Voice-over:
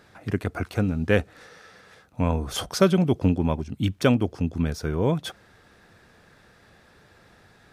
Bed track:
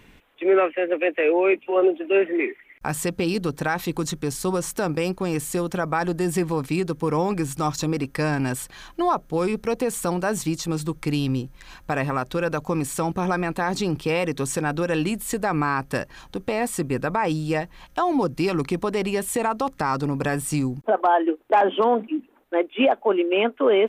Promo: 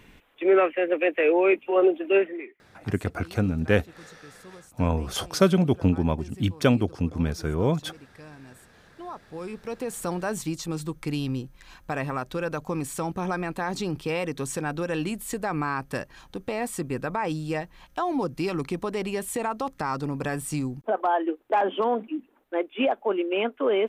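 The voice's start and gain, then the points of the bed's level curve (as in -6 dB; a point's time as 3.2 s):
2.60 s, -0.5 dB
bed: 2.17 s -1 dB
2.58 s -23 dB
8.62 s -23 dB
10.07 s -5 dB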